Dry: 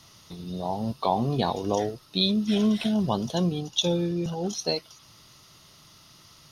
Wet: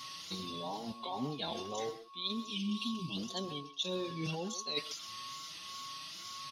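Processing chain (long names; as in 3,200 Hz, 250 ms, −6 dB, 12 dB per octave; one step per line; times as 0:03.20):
meter weighting curve D
gain on a spectral selection 0:02.46–0:03.16, 430–2,300 Hz −20 dB
parametric band 250 Hz +5 dB 0.32 octaves
reversed playback
downward compressor 16 to 1, threshold −33 dBFS, peak gain reduction 25.5 dB
reversed playback
tape wow and flutter 110 cents
steady tone 1,100 Hz −48 dBFS
far-end echo of a speakerphone 130 ms, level −12 dB
barber-pole flanger 4.9 ms +1.7 Hz
level +1 dB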